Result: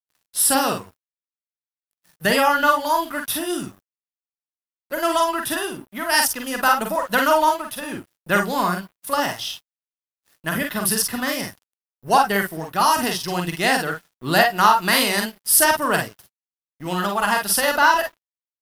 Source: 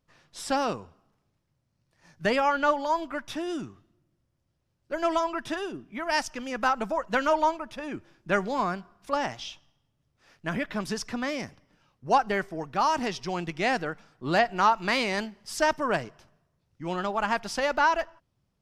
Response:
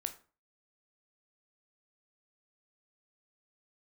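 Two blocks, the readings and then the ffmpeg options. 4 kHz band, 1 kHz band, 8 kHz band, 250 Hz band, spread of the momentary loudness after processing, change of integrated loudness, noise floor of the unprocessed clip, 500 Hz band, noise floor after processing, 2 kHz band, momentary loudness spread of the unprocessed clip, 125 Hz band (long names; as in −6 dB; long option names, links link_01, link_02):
+11.0 dB, +7.0 dB, +19.0 dB, +6.0 dB, 13 LU, +8.0 dB, −76 dBFS, +5.0 dB, below −85 dBFS, +8.5 dB, 14 LU, +7.0 dB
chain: -filter_complex "[0:a]highpass=frequency=110:poles=1,equalizer=frequency=470:width=0.38:gain=-7.5,bandreject=frequency=2300:width=5.7,acontrast=72,aexciter=amount=13:drive=3.7:freq=9500,asplit=2[link_01][link_02];[link_02]aecho=0:1:45|56:0.596|0.335[link_03];[link_01][link_03]amix=inputs=2:normalize=0,aeval=exprs='sgn(val(0))*max(abs(val(0))-0.00398,0)':channel_layout=same,volume=4.5dB"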